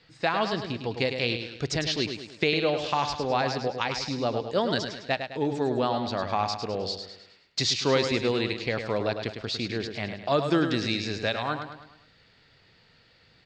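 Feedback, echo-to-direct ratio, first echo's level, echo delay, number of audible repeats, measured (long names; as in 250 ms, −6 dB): 46%, −6.5 dB, −7.5 dB, 104 ms, 5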